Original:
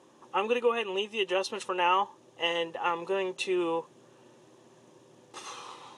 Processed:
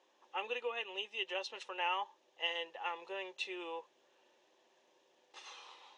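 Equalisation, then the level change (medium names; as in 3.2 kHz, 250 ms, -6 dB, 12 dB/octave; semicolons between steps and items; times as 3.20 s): band-pass 780–5700 Hz; distance through air 57 m; peaking EQ 1.2 kHz -9.5 dB 0.72 oct; -4.0 dB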